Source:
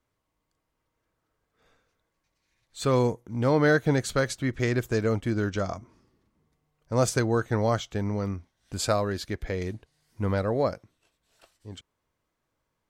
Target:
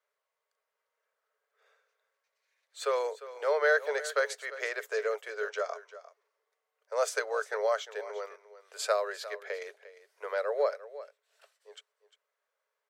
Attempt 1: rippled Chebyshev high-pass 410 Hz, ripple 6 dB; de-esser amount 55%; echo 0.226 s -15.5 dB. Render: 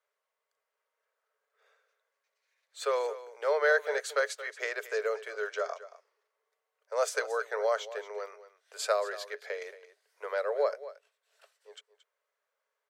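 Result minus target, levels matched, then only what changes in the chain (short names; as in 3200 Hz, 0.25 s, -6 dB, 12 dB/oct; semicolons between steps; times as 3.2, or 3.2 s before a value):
echo 0.125 s early
change: echo 0.351 s -15.5 dB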